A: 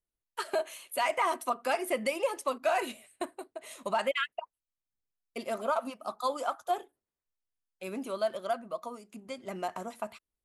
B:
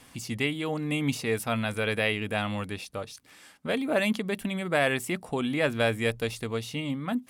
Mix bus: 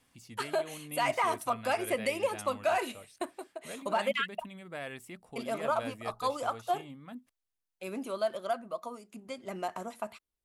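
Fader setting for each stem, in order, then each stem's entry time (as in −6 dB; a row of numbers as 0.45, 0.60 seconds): −0.5, −16.0 decibels; 0.00, 0.00 seconds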